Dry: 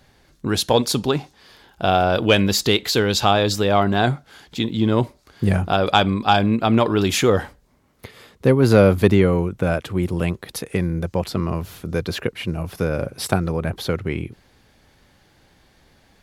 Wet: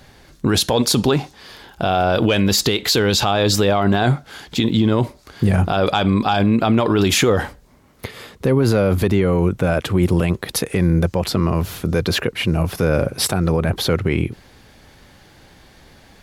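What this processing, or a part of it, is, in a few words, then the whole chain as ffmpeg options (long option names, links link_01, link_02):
stacked limiters: -af "alimiter=limit=-8.5dB:level=0:latency=1:release=226,alimiter=limit=-15.5dB:level=0:latency=1:release=39,volume=8.5dB"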